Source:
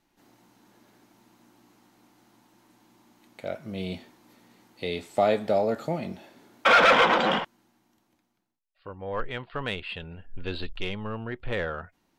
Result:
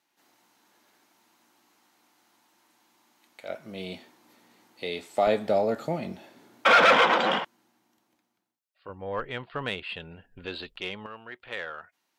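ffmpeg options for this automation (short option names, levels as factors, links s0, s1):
-af "asetnsamples=n=441:p=0,asendcmd='3.49 highpass f 350;5.27 highpass f 93;6.98 highpass f 280;8.89 highpass f 82;9.69 highpass f 180;10.46 highpass f 410;11.06 highpass f 1400',highpass=f=1000:p=1"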